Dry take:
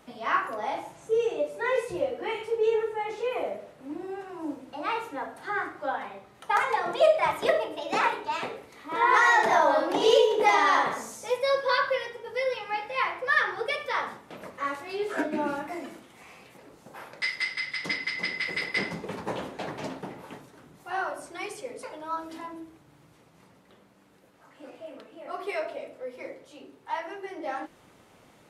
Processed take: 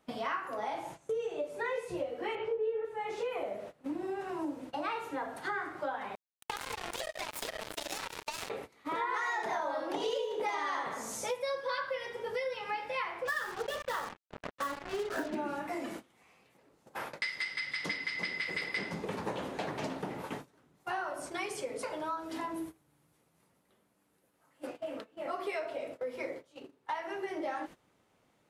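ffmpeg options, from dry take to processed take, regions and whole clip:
ffmpeg -i in.wav -filter_complex "[0:a]asettb=1/sr,asplit=3[link_01][link_02][link_03];[link_01]atrim=end=2.354[link_04];[link_02]atrim=start=2.35:end=2.85,asetpts=PTS-STARTPTS,afade=type=in:duration=0.004:curve=qsin,afade=type=out:start_time=0.496:duration=0.004:curve=qsin,lowpass=2400,equalizer=frequency=530:width=3.6:gain=9,asplit=2[link_05][link_06];[link_06]adelay=18,volume=-2.5dB[link_07];[link_05][link_07]amix=inputs=2:normalize=0,atrim=end_sample=22050[link_08];[link_03]atrim=start=2.846[link_09];[link_04][link_08]acrossfade=duration=0.004:curve1=hsin:curve2=qsin[link_10];[link_10][link_09]acrossfade=duration=0.004:curve1=qsin:curve2=hsin,asettb=1/sr,asplit=3[link_11][link_12][link_13];[link_11]atrim=end=6.154[link_14];[link_12]atrim=start=6.15:end=8.5,asetpts=PTS-STARTPTS,afade=type=in:duration=0.004:curve=qsin,afade=type=out:start_time=2.346:duration=0.004:curve=qsin,bass=frequency=250:gain=-9,treble=frequency=4000:gain=14,acompressor=threshold=-31dB:ratio=16:attack=3.2:release=140:knee=1:detection=peak,acrusher=bits=4:mix=0:aa=0.5[link_15];[link_13]atrim=start=8.496[link_16];[link_14][link_15]acrossfade=duration=0.004:curve1=hsin:curve2=qsin[link_17];[link_17][link_16]acrossfade=duration=0.004:curve1=qsin:curve2=hsin,asettb=1/sr,asplit=3[link_18][link_19][link_20];[link_18]atrim=end=13.254[link_21];[link_19]atrim=start=13.25:end=15.35,asetpts=PTS-STARTPTS,afade=type=in:duration=0.004:curve=qsin,afade=type=out:start_time=2.096:duration=0.004:curve=qsin,asuperstop=centerf=2300:order=8:qfactor=3.3,adynamicsmooth=sensitivity=8:basefreq=1300,acrusher=bits=5:mix=0:aa=0.5[link_22];[link_20]atrim=start=15.346[link_23];[link_21][link_22]acrossfade=duration=0.004:curve1=hsin:curve2=qsin[link_24];[link_24][link_23]acrossfade=duration=0.004:curve1=qsin:curve2=hsin,asettb=1/sr,asplit=3[link_25][link_26][link_27];[link_25]atrim=end=22.544[link_28];[link_26]atrim=start=22.54:end=24.67,asetpts=PTS-STARTPTS,afade=type=in:duration=0.004:curve=qsin,afade=type=out:start_time=2.126:duration=0.004:curve=qsin,equalizer=frequency=11000:width=1.1:gain=12.5,asplit=2[link_29][link_30];[link_30]adelay=13,volume=-13dB[link_31];[link_29][link_31]amix=inputs=2:normalize=0,atrim=end_sample=93933[link_32];[link_27]atrim=start=24.666[link_33];[link_28][link_32]acrossfade=duration=0.004:curve1=hsin:curve2=qsin[link_34];[link_34][link_33]acrossfade=duration=0.004:curve1=qsin:curve2=hsin,agate=range=-19dB:threshold=-45dB:ratio=16:detection=peak,acompressor=threshold=-39dB:ratio=5,volume=5dB" out.wav

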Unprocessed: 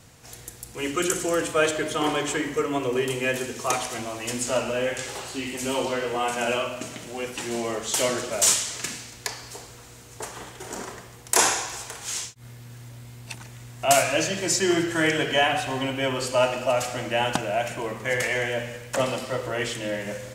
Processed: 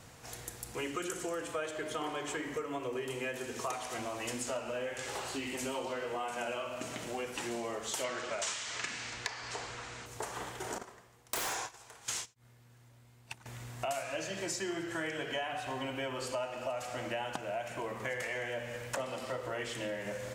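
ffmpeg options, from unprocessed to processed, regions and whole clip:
ffmpeg -i in.wav -filter_complex "[0:a]asettb=1/sr,asplit=3[link_01][link_02][link_03];[link_01]atrim=end=8.044[link_04];[link_02]atrim=start=8.04:end=10.06,asetpts=PTS-STARTPTS,afade=type=in:duration=0.004:curve=qsin,afade=type=out:start_time=2.016:duration=0.004:curve=qsin,lowpass=frequency=7900:width=0.5412,lowpass=frequency=7900:width=1.3066,equalizer=frequency=2000:width=0.52:gain=8[link_05];[link_03]atrim=start=10.056[link_06];[link_04][link_05]acrossfade=duration=0.004:curve1=hsin:curve2=qsin[link_07];[link_07][link_06]acrossfade=duration=0.004:curve1=qsin:curve2=hsin,asettb=1/sr,asplit=3[link_08][link_09][link_10];[link_08]atrim=end=10.784[link_11];[link_09]atrim=start=10.78:end=13.46,asetpts=PTS-STARTPTS,afade=type=in:duration=0.004:curve=qsin,afade=type=out:start_time=2.676:duration=0.004:curve=qsin,agate=range=-20dB:threshold=-33dB:ratio=16:release=100:detection=peak,acontrast=36,aeval=exprs='0.178*(abs(mod(val(0)/0.178+3,4)-2)-1)':channel_layout=same[link_12];[link_10]atrim=start=13.456[link_13];[link_11][link_12]acrossfade=duration=0.004:curve1=hsin:curve2=qsin[link_14];[link_14][link_13]acrossfade=duration=0.004:curve1=qsin:curve2=hsin,equalizer=frequency=950:width_type=o:width=2.6:gain=5,acompressor=threshold=-31dB:ratio=6,volume=-4dB" out.wav

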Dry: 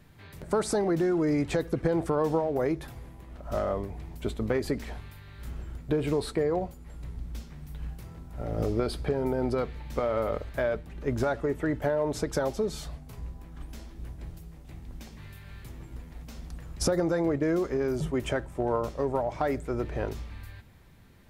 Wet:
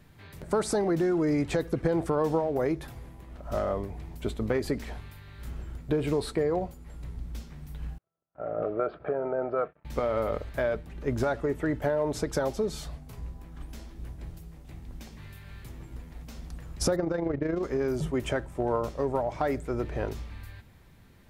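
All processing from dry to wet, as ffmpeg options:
ffmpeg -i in.wav -filter_complex "[0:a]asettb=1/sr,asplit=3[link_01][link_02][link_03];[link_01]atrim=end=7.984[link_04];[link_02]atrim=start=7.98:end=9.85,asetpts=PTS-STARTPTS,afade=type=in:duration=0.004:curve=qsin,afade=type=out:start_time=1.866:duration=0.004:curve=qsin,agate=range=-38dB:threshold=-37dB:ratio=16:release=100:detection=peak,highpass=240,equalizer=frequency=240:width_type=q:width=4:gain=-10,equalizer=frequency=360:width_type=q:width=4:gain=-3,equalizer=frequency=640:width_type=q:width=4:gain=9,equalizer=frequency=910:width_type=q:width=4:gain=-6,equalizer=frequency=1300:width_type=q:width=4:gain=7,equalizer=frequency=2000:width_type=q:width=4:gain=-6,lowpass=frequency=2100:width=0.5412,lowpass=frequency=2100:width=1.3066[link_05];[link_03]atrim=start=9.846[link_06];[link_04][link_05]acrossfade=duration=0.004:curve1=hsin:curve2=qsin[link_07];[link_07][link_06]acrossfade=duration=0.004:curve1=qsin:curve2=hsin,asettb=1/sr,asplit=3[link_08][link_09][link_10];[link_08]atrim=end=16.964[link_11];[link_09]atrim=start=16.96:end=17.63,asetpts=PTS-STARTPTS,afade=type=in:duration=0.004:curve=qsin,afade=type=out:start_time=0.666:duration=0.004:curve=qsin,asubboost=boost=7.5:cutoff=130,adynamicsmooth=sensitivity=3:basefreq=3200,tremolo=f=26:d=0.571[link_12];[link_10]atrim=start=17.626[link_13];[link_11][link_12]acrossfade=duration=0.004:curve1=hsin:curve2=qsin[link_14];[link_14][link_13]acrossfade=duration=0.004:curve1=qsin:curve2=hsin" out.wav

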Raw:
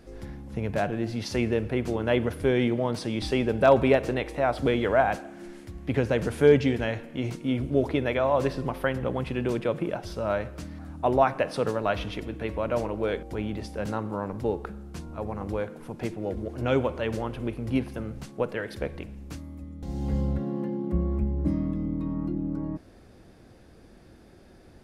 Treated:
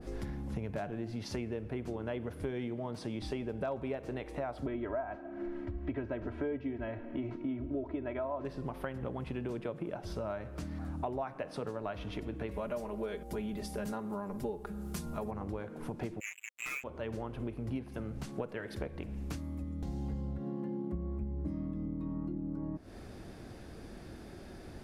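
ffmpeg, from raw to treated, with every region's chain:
ffmpeg -i in.wav -filter_complex "[0:a]asettb=1/sr,asplit=3[link_01][link_02][link_03];[link_01]atrim=end=4.664[link_04];[link_02]atrim=start=4.66:end=8.45,asetpts=PTS-STARTPTS,afade=type=in:duration=0.004:curve=qsin,afade=type=out:start_time=3.786:duration=0.004:curve=qsin,lowpass=2000,aecho=1:1:3.1:0.77,atrim=end_sample=167139[link_05];[link_03]atrim=start=8.446[link_06];[link_04][link_05]acrossfade=duration=0.004:curve1=hsin:curve2=qsin[link_07];[link_07][link_06]acrossfade=duration=0.004:curve1=qsin:curve2=hsin,asettb=1/sr,asplit=3[link_08][link_09][link_10];[link_08]atrim=end=12.514[link_11];[link_09]atrim=start=12.51:end=15.31,asetpts=PTS-STARTPTS,afade=type=in:duration=0.004:curve=qsin,afade=type=out:start_time=2.796:duration=0.004:curve=qsin,aemphasis=mode=production:type=50fm,aecho=1:1:4.9:0.67,atrim=end_sample=123480[link_12];[link_10]atrim=start=15.306[link_13];[link_11][link_12]acrossfade=duration=0.004:curve1=hsin:curve2=qsin[link_14];[link_14][link_13]acrossfade=duration=0.004:curve1=qsin:curve2=hsin,asettb=1/sr,asplit=3[link_15][link_16][link_17];[link_15]atrim=end=16.204[link_18];[link_16]atrim=start=16.2:end=16.84,asetpts=PTS-STARTPTS,afade=type=in:duration=0.004:curve=qsin,afade=type=out:start_time=0.636:duration=0.004:curve=qsin,lowpass=frequency=2300:width_type=q:width=0.5098,lowpass=frequency=2300:width_type=q:width=0.6013,lowpass=frequency=2300:width_type=q:width=0.9,lowpass=frequency=2300:width_type=q:width=2.563,afreqshift=-2700,acrusher=bits=3:mix=0:aa=0.5,aecho=1:1:6.6:0.73,atrim=end_sample=28224[link_19];[link_17]atrim=start=16.836[link_20];[link_18][link_19]acrossfade=duration=0.004:curve1=hsin:curve2=qsin[link_21];[link_21][link_20]acrossfade=duration=0.004:curve1=qsin:curve2=hsin,bandreject=frequency=510:width=17,acompressor=threshold=-40dB:ratio=6,adynamicequalizer=threshold=0.00126:dfrequency=1600:dqfactor=0.7:tfrequency=1600:tqfactor=0.7:attack=5:release=100:ratio=0.375:range=2.5:mode=cutabove:tftype=highshelf,volume=4.5dB" out.wav

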